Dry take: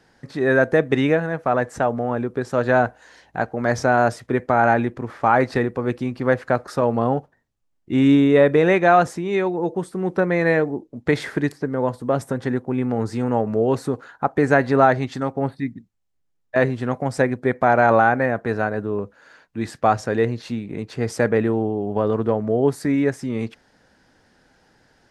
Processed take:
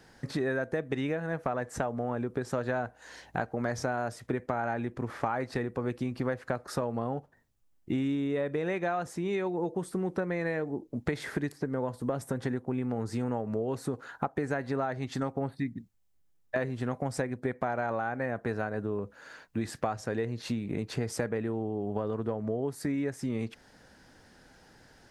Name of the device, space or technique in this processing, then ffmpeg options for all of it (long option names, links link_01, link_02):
ASMR close-microphone chain: -af "lowshelf=frequency=130:gain=3.5,acompressor=threshold=-28dB:ratio=10,highshelf=frequency=8600:gain=8"